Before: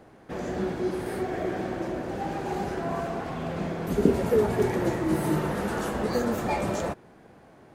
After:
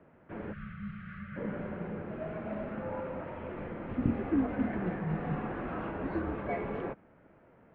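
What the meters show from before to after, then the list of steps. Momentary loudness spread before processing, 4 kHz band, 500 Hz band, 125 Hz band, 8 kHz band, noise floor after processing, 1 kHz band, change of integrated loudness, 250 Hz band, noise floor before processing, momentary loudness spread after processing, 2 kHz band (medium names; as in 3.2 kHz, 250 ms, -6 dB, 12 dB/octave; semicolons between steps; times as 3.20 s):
8 LU, under -15 dB, -11.0 dB, -6.0 dB, under -35 dB, -61 dBFS, -9.5 dB, -8.0 dB, -5.5 dB, -53 dBFS, 11 LU, -7.5 dB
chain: mistuned SSB -160 Hz 260–2800 Hz; time-frequency box 0.53–1.36 s, 210–1100 Hz -26 dB; trim -6 dB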